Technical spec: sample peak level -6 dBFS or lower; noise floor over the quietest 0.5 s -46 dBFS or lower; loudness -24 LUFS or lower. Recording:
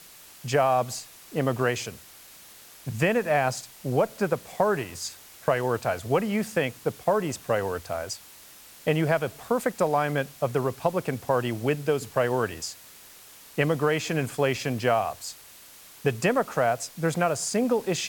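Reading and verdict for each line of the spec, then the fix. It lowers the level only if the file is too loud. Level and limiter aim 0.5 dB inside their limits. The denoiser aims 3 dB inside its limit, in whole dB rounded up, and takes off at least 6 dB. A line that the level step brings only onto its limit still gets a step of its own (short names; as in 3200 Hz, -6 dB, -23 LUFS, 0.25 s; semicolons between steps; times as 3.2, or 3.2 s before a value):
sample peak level -9.5 dBFS: OK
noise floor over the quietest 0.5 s -49 dBFS: OK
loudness -27.0 LUFS: OK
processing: none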